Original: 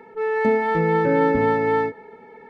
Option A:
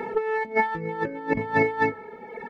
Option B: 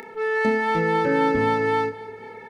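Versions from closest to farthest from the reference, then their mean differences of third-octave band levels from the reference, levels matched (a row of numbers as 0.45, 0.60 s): B, A; 4.0, 6.5 dB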